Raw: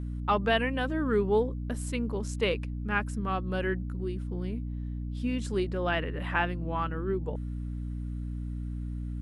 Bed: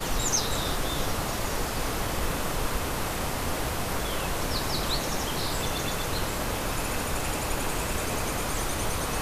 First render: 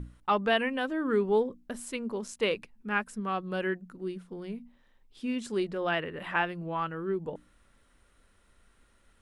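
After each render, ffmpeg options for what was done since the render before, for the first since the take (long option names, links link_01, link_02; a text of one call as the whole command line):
ffmpeg -i in.wav -af "bandreject=frequency=60:width_type=h:width=6,bandreject=frequency=120:width_type=h:width=6,bandreject=frequency=180:width_type=h:width=6,bandreject=frequency=240:width_type=h:width=6,bandreject=frequency=300:width_type=h:width=6" out.wav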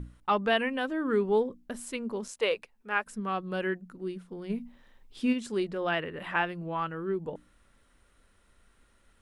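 ffmpeg -i in.wav -filter_complex "[0:a]asettb=1/sr,asplit=3[link_01][link_02][link_03];[link_01]atrim=end=2.284[link_04];[link_02]atrim=start=2.28:end=3.06,asetpts=PTS-STARTPTS,afade=type=in:duration=0.004:curve=qsin,afade=type=out:start_time=0.776:duration=0.004:curve=qsin,lowshelf=frequency=360:width_type=q:width=1.5:gain=-9.5[link_05];[link_03]atrim=start=3.056[link_06];[link_04][link_05]acrossfade=duration=0.004:curve1=hsin:curve2=qsin[link_07];[link_07][link_06]acrossfade=duration=0.004:curve1=qsin:curve2=hsin,asplit=3[link_08][link_09][link_10];[link_08]afade=type=out:start_time=4.49:duration=0.02[link_11];[link_09]acontrast=59,afade=type=in:start_time=4.49:duration=0.02,afade=type=out:start_time=5.32:duration=0.02[link_12];[link_10]afade=type=in:start_time=5.32:duration=0.02[link_13];[link_11][link_12][link_13]amix=inputs=3:normalize=0" out.wav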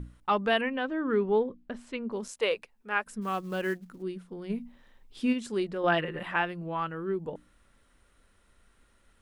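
ffmpeg -i in.wav -filter_complex "[0:a]asettb=1/sr,asplit=3[link_01][link_02][link_03];[link_01]atrim=end=0.614[link_04];[link_02]atrim=start=0.61:end=2.12,asetpts=PTS-STARTPTS,afade=type=in:duration=0.004:curve=qsin,afade=type=out:start_time=1.506:duration=0.004:curve=qsin,lowpass=3500[link_05];[link_03]atrim=start=2.116[link_06];[link_04][link_05]acrossfade=duration=0.004:curve1=hsin:curve2=qsin[link_07];[link_07][link_06]acrossfade=duration=0.004:curve1=qsin:curve2=hsin,asplit=3[link_08][link_09][link_10];[link_08]afade=type=out:start_time=3.21:duration=0.02[link_11];[link_09]acrusher=bits=6:mode=log:mix=0:aa=0.000001,afade=type=in:start_time=3.21:duration=0.02,afade=type=out:start_time=4.01:duration=0.02[link_12];[link_10]afade=type=in:start_time=4.01:duration=0.02[link_13];[link_11][link_12][link_13]amix=inputs=3:normalize=0,asettb=1/sr,asplit=3[link_14][link_15][link_16];[link_14]atrim=end=5.834[link_17];[link_15]atrim=start=5.83:end=6.23,asetpts=PTS-STARTPTS,afade=type=in:duration=0.004:curve=qsin,afade=type=out:start_time=0.396:duration=0.004:curve=qsin,aecho=1:1:5.7:0.92,atrim=end_sample=17640[link_18];[link_16]atrim=start=6.226[link_19];[link_17][link_18]acrossfade=duration=0.004:curve1=hsin:curve2=qsin[link_20];[link_20][link_19]acrossfade=duration=0.004:curve1=qsin:curve2=hsin" out.wav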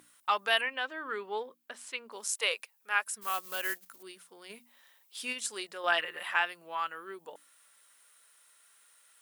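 ffmpeg -i in.wav -af "highpass=820,aemphasis=mode=production:type=75fm" out.wav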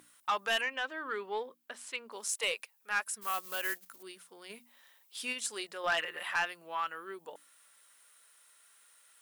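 ffmpeg -i in.wav -af "asoftclip=type=tanh:threshold=-23dB" out.wav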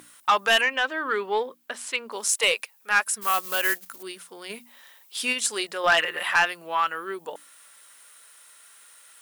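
ffmpeg -i in.wav -af "volume=11dB" out.wav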